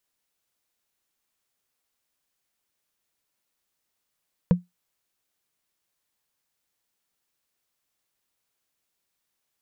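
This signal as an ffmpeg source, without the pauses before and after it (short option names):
-f lavfi -i "aevalsrc='0.316*pow(10,-3*t/0.17)*sin(2*PI*177*t)+0.126*pow(10,-3*t/0.05)*sin(2*PI*488*t)+0.0501*pow(10,-3*t/0.022)*sin(2*PI*956.5*t)+0.02*pow(10,-3*t/0.012)*sin(2*PI*1581.1*t)+0.00794*pow(10,-3*t/0.008)*sin(2*PI*2361.2*t)':d=0.45:s=44100"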